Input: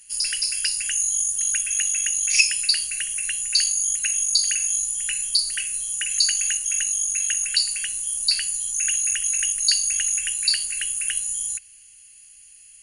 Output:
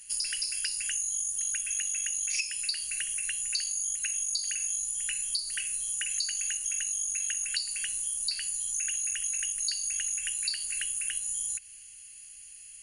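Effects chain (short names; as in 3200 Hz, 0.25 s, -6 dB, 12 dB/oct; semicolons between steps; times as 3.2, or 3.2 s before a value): compressor 6:1, threshold -29 dBFS, peak gain reduction 16.5 dB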